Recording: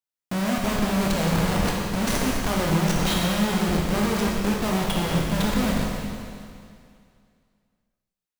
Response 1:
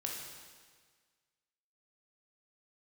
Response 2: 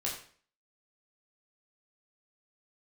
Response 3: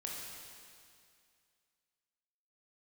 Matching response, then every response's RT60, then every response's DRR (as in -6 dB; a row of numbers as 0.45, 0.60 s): 3; 1.6, 0.45, 2.3 s; -1.0, -4.5, -2.5 dB